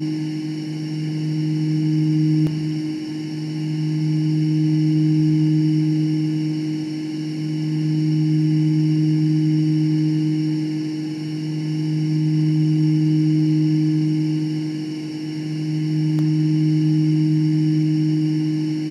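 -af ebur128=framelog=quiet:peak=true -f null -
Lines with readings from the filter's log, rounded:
Integrated loudness:
  I:         -20.3 LUFS
  Threshold: -30.3 LUFS
Loudness range:
  LRA:         2.1 LU
  Threshold: -40.2 LUFS
  LRA low:   -21.2 LUFS
  LRA high:  -19.1 LUFS
True peak:
  Peak:       -9.9 dBFS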